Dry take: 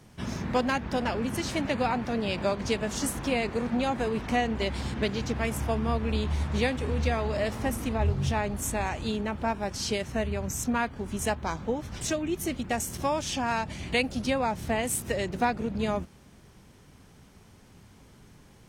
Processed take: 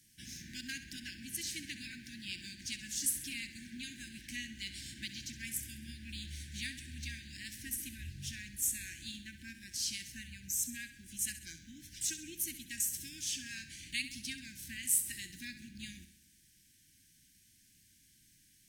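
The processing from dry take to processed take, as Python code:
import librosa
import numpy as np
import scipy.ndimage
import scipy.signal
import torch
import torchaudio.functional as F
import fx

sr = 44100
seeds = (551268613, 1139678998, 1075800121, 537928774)

p1 = fx.brickwall_bandstop(x, sr, low_hz=360.0, high_hz=1500.0)
p2 = F.preemphasis(torch.from_numpy(p1), 0.9).numpy()
y = p2 + fx.echo_feedback(p2, sr, ms=66, feedback_pct=52, wet_db=-12, dry=0)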